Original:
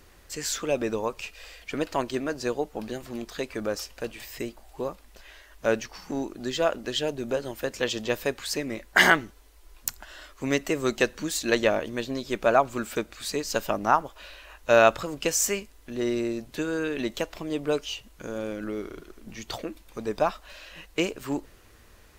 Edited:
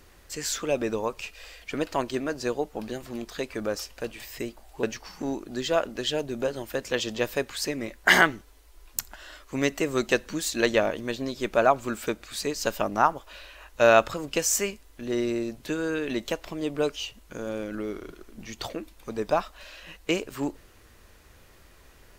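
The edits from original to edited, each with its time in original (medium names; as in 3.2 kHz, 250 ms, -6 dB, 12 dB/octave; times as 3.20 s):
4.83–5.72 s: delete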